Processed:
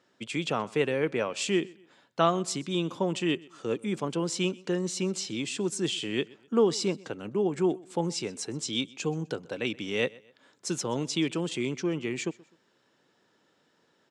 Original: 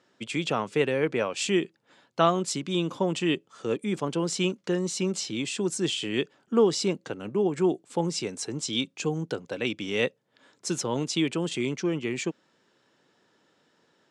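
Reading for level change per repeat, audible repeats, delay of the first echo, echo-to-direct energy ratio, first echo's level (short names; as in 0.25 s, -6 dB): -9.0 dB, 2, 0.127 s, -23.0 dB, -23.5 dB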